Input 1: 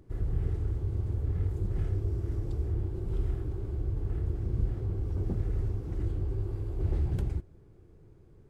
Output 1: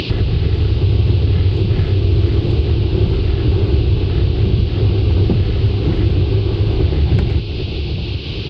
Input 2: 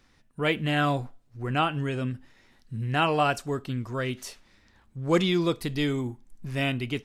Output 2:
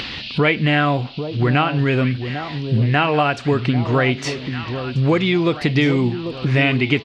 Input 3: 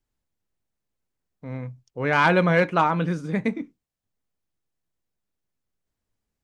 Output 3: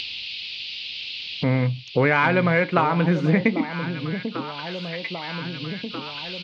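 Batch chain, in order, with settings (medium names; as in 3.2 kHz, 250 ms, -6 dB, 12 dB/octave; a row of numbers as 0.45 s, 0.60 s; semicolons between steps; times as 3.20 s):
compression 20:1, threshold -32 dBFS; high-pass 70 Hz; on a send: echo whose repeats swap between lows and highs 794 ms, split 910 Hz, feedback 60%, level -10 dB; on the sum: resampled via 32 kHz; band noise 2.6–4.8 kHz -60 dBFS; distance through air 150 m; upward compressor, threshold -39 dBFS; peaking EQ 2.2 kHz +6.5 dB 0.59 oct; peak normalisation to -3 dBFS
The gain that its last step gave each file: +25.0 dB, +19.0 dB, +16.5 dB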